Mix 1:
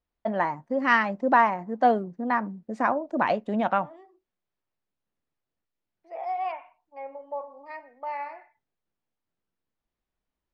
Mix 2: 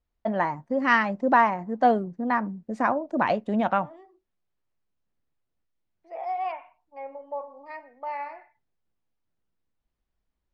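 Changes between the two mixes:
first voice: add high-shelf EQ 8,800 Hz +5 dB
master: add low-shelf EQ 120 Hz +9 dB

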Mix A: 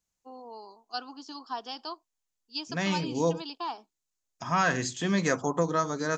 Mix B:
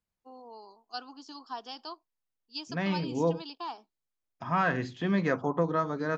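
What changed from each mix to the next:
first voice −3.5 dB
second voice: add high-frequency loss of the air 320 metres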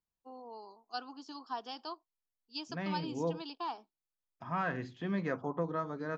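second voice −7.0 dB
master: add high-shelf EQ 4,400 Hz −6.5 dB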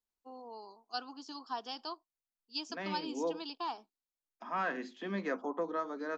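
second voice: add Butterworth high-pass 200 Hz 72 dB per octave
master: add high-shelf EQ 4,400 Hz +6.5 dB

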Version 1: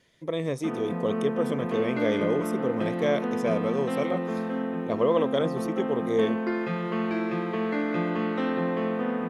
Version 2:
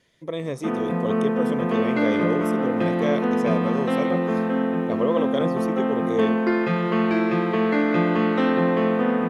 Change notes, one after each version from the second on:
background +7.0 dB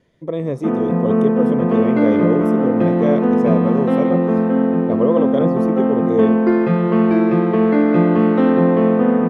master: add tilt shelving filter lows +8 dB, about 1,400 Hz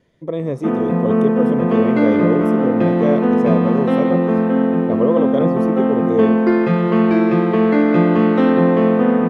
background: add high-shelf EQ 2,200 Hz +7.5 dB

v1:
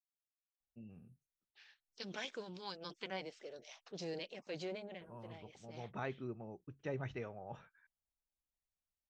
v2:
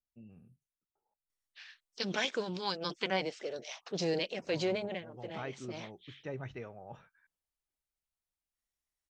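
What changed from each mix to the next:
first voice: entry −0.60 s
second voice +11.0 dB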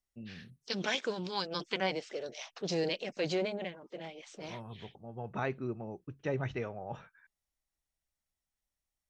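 first voice +7.0 dB
second voice: entry −1.30 s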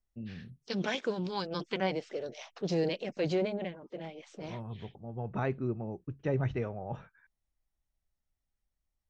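master: add spectral tilt −2 dB per octave

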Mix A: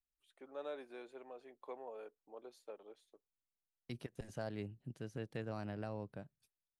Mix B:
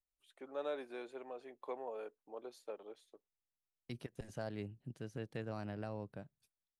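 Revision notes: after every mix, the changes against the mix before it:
first voice +4.5 dB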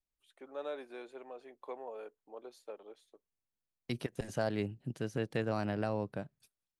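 second voice +10.0 dB
master: add low-shelf EQ 110 Hz −6.5 dB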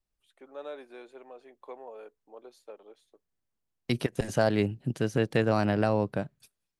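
second voice +9.0 dB

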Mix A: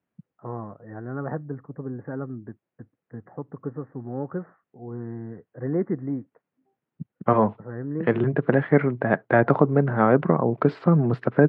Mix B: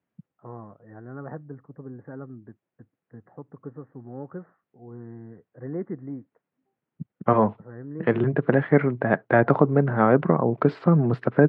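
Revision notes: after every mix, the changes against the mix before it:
first voice −6.5 dB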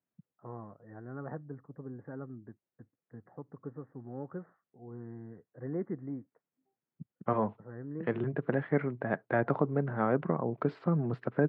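first voice −4.0 dB
second voice −10.5 dB

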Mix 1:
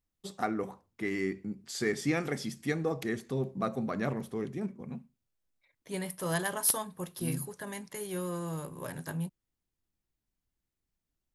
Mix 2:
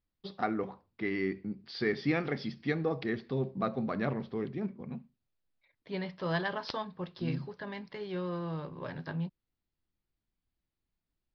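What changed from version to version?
master: add Butterworth low-pass 5,000 Hz 72 dB per octave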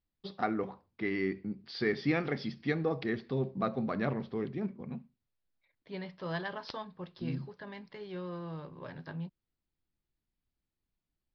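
second voice −4.5 dB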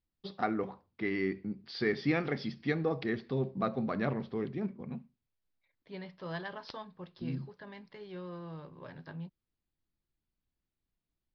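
second voice −3.0 dB

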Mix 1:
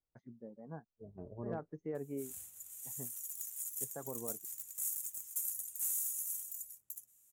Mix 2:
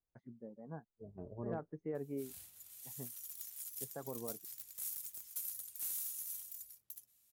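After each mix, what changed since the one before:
first voice: add high-frequency loss of the air 180 metres
background: add high shelf with overshoot 5,800 Hz −7.5 dB, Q 3
master: add high-shelf EQ 4,100 Hz +5 dB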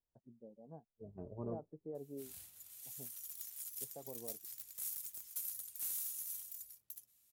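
first voice: add transistor ladder low-pass 880 Hz, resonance 35%

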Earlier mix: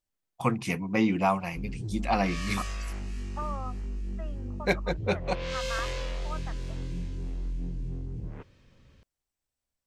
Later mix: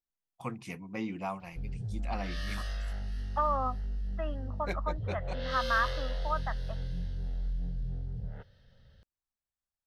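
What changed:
first voice −11.5 dB
second voice +7.5 dB
background: add phaser with its sweep stopped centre 1,600 Hz, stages 8

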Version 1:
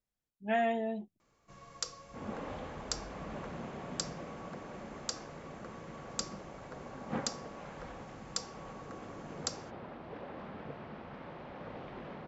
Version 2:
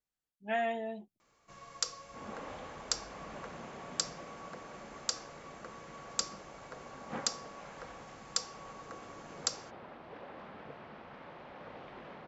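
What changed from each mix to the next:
first sound +4.0 dB
master: add low-shelf EQ 410 Hz −8.5 dB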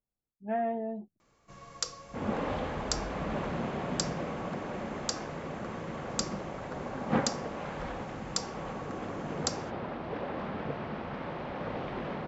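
speech: add low-pass filter 1,100 Hz 12 dB per octave
second sound +9.0 dB
master: add low-shelf EQ 410 Hz +8.5 dB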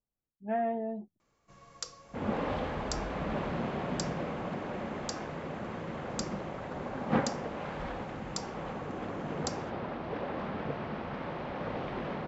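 first sound −6.0 dB

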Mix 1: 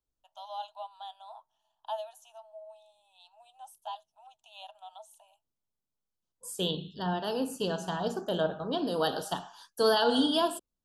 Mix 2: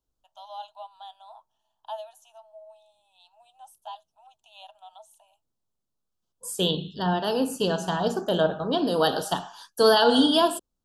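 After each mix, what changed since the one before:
second voice +6.5 dB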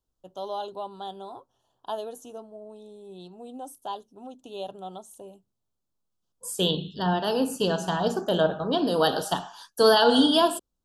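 first voice: remove Chebyshev high-pass with heavy ripple 620 Hz, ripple 9 dB

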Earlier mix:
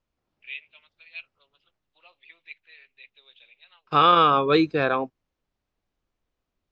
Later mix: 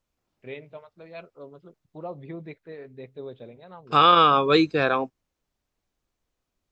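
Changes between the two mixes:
first voice: remove high-pass with resonance 2,700 Hz, resonance Q 4.7
second voice: remove high-frequency loss of the air 110 metres

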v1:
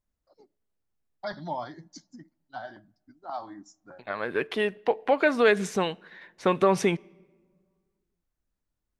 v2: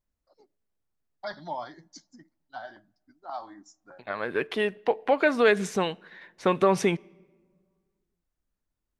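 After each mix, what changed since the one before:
first voice: add low-shelf EQ 270 Hz −10 dB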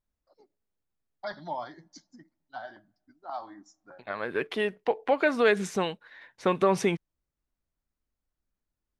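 first voice: add high-frequency loss of the air 60 metres
second voice: send off

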